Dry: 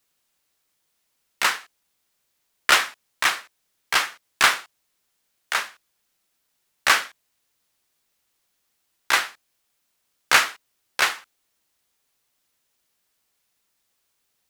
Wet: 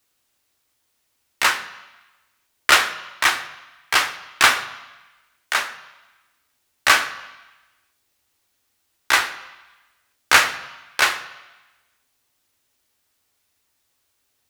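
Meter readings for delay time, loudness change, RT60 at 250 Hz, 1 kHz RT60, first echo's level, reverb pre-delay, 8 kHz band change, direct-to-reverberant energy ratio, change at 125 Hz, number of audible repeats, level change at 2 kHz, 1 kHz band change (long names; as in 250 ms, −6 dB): no echo audible, +2.5 dB, 1.0 s, 1.2 s, no echo audible, 3 ms, +2.5 dB, 7.0 dB, can't be measured, no echo audible, +3.5 dB, +3.0 dB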